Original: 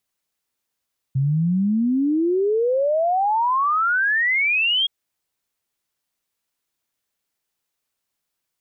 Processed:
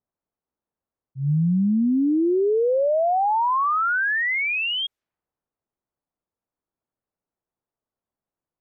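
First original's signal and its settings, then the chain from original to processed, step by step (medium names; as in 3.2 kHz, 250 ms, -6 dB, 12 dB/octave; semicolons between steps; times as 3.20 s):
log sweep 130 Hz -> 3.3 kHz 3.72 s -16.5 dBFS
level-controlled noise filter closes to 1 kHz, open at -23 dBFS; treble shelf 2.9 kHz -11 dB; slow attack 156 ms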